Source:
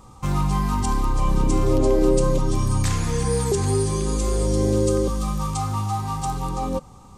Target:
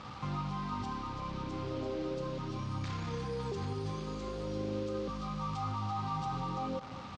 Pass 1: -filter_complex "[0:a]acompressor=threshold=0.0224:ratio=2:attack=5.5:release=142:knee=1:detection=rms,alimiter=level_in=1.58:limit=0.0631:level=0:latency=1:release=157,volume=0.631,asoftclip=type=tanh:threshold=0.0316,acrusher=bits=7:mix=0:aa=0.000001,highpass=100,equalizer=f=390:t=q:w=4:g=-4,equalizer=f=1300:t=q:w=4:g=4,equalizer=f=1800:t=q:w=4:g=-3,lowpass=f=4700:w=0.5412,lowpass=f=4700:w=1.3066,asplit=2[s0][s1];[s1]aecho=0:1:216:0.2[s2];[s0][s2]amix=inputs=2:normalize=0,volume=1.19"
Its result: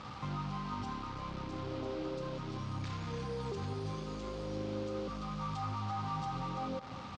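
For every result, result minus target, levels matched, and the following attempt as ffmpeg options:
compression: peak gain reduction +12 dB; saturation: distortion +14 dB
-filter_complex "[0:a]alimiter=level_in=1.58:limit=0.0631:level=0:latency=1:release=157,volume=0.631,asoftclip=type=tanh:threshold=0.0316,acrusher=bits=7:mix=0:aa=0.000001,highpass=100,equalizer=f=390:t=q:w=4:g=-4,equalizer=f=1300:t=q:w=4:g=4,equalizer=f=1800:t=q:w=4:g=-3,lowpass=f=4700:w=0.5412,lowpass=f=4700:w=1.3066,asplit=2[s0][s1];[s1]aecho=0:1:216:0.2[s2];[s0][s2]amix=inputs=2:normalize=0,volume=1.19"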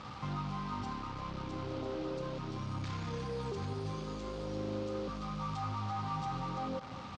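saturation: distortion +14 dB
-filter_complex "[0:a]alimiter=level_in=1.58:limit=0.0631:level=0:latency=1:release=157,volume=0.631,asoftclip=type=tanh:threshold=0.0794,acrusher=bits=7:mix=0:aa=0.000001,highpass=100,equalizer=f=390:t=q:w=4:g=-4,equalizer=f=1300:t=q:w=4:g=4,equalizer=f=1800:t=q:w=4:g=-3,lowpass=f=4700:w=0.5412,lowpass=f=4700:w=1.3066,asplit=2[s0][s1];[s1]aecho=0:1:216:0.2[s2];[s0][s2]amix=inputs=2:normalize=0,volume=1.19"

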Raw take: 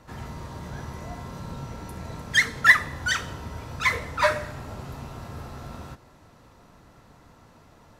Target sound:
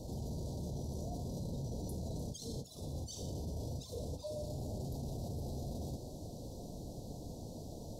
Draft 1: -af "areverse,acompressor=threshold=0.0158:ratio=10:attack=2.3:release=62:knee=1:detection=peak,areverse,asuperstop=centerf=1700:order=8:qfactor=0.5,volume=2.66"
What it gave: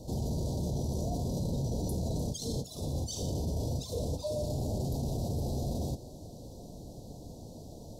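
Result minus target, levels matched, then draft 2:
compression: peak gain reduction -8 dB
-af "areverse,acompressor=threshold=0.00562:ratio=10:attack=2.3:release=62:knee=1:detection=peak,areverse,asuperstop=centerf=1700:order=8:qfactor=0.5,volume=2.66"

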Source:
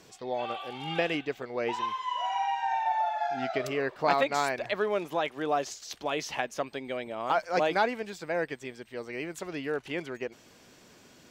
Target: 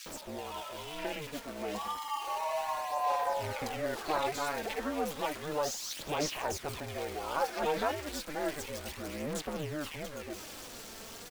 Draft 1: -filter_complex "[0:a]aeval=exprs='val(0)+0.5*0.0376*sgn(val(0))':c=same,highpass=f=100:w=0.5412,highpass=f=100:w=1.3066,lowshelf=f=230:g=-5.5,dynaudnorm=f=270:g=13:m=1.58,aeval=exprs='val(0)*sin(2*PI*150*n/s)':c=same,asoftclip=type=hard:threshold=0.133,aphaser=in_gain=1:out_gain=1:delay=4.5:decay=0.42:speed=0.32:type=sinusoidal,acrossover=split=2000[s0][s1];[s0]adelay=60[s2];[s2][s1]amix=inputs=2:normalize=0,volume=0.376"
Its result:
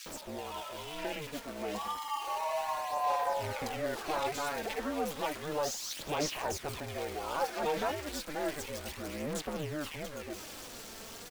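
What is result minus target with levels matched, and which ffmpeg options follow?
hard clipper: distortion +20 dB
-filter_complex "[0:a]aeval=exprs='val(0)+0.5*0.0376*sgn(val(0))':c=same,highpass=f=100:w=0.5412,highpass=f=100:w=1.3066,lowshelf=f=230:g=-5.5,dynaudnorm=f=270:g=13:m=1.58,aeval=exprs='val(0)*sin(2*PI*150*n/s)':c=same,asoftclip=type=hard:threshold=0.282,aphaser=in_gain=1:out_gain=1:delay=4.5:decay=0.42:speed=0.32:type=sinusoidal,acrossover=split=2000[s0][s1];[s0]adelay=60[s2];[s2][s1]amix=inputs=2:normalize=0,volume=0.376"

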